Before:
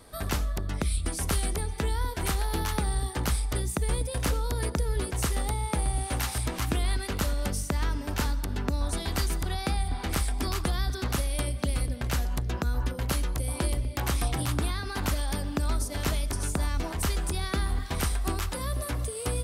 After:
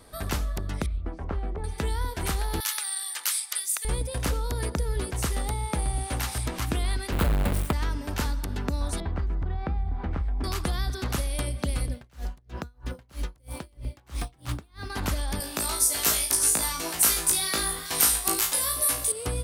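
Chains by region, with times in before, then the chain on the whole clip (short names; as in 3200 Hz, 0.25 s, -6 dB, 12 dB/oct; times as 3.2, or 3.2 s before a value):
0.86–1.64 LPF 1100 Hz + bell 130 Hz -5.5 dB 1.9 oct
2.6–3.85 HPF 1400 Hz + tilt +3 dB/oct
7.12–7.73 half-waves squared off + bell 5900 Hz -12.5 dB 0.69 oct
9–10.44 LPF 1500 Hz + low shelf 160 Hz +8 dB + compressor 3:1, threshold -26 dBFS
11.94–14.9 median filter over 3 samples + dB-linear tremolo 3.1 Hz, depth 33 dB
15.4–19.12 RIAA curve recording + flutter echo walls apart 3.1 m, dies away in 0.32 s
whole clip: dry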